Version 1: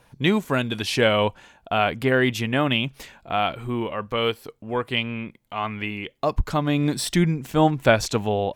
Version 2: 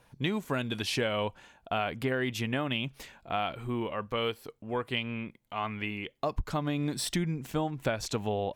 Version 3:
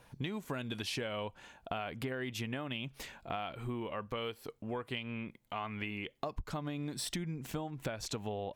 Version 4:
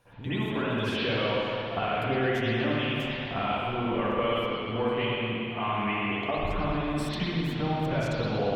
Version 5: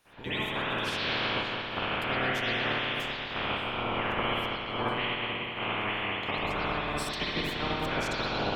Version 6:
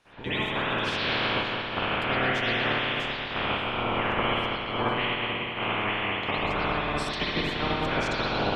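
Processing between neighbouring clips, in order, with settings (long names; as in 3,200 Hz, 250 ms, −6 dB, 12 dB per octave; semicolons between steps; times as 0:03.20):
downward compressor 12 to 1, threshold −20 dBFS, peak gain reduction 10 dB; level −5.5 dB
downward compressor 4 to 1, threshold −38 dBFS, peak gain reduction 12 dB; level +1.5 dB
convolution reverb RT60 2.9 s, pre-delay 53 ms, DRR −18.5 dB; level −6.5 dB
ceiling on every frequency bin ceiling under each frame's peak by 19 dB; level −2.5 dB
high-frequency loss of the air 68 metres; level +4 dB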